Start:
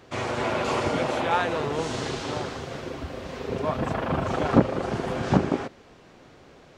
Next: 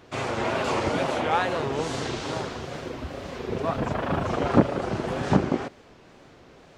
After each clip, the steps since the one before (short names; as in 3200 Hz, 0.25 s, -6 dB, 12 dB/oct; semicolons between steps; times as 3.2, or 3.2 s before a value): wow and flutter 120 cents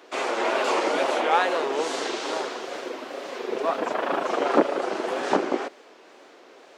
HPF 320 Hz 24 dB/oct; gain +3 dB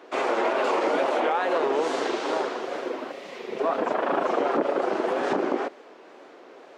limiter -17 dBFS, peak gain reduction 11 dB; spectral gain 3.12–3.59, 230–1800 Hz -8 dB; high shelf 2700 Hz -11 dB; gain +3.5 dB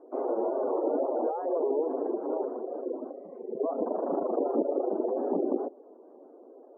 spectral gate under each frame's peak -15 dB strong; Bessel low-pass 510 Hz, order 4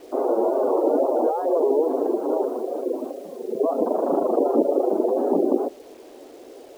notches 50/100/150/200 Hz; requantised 10-bit, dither none; gain +8 dB